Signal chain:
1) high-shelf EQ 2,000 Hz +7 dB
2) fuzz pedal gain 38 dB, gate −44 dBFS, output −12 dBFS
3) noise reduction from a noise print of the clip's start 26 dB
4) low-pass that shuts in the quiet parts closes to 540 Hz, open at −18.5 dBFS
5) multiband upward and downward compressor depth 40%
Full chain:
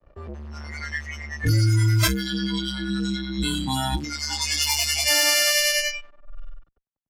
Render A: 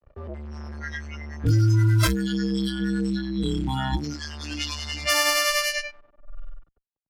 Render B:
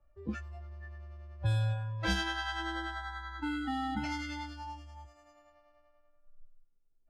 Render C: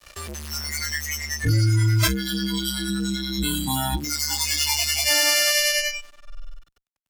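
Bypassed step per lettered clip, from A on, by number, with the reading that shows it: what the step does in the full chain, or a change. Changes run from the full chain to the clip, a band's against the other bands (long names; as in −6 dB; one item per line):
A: 1, change in integrated loudness −2.0 LU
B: 2, distortion level −4 dB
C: 4, change in momentary loudness spread −7 LU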